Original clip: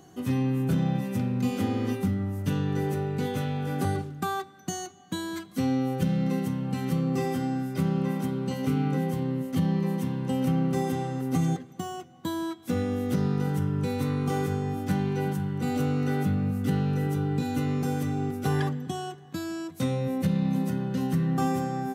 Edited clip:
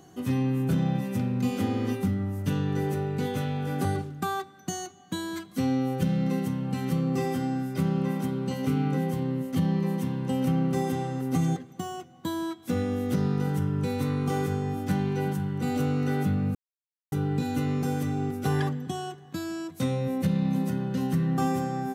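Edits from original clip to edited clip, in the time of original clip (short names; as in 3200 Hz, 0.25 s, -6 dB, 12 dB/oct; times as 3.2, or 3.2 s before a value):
16.55–17.12 mute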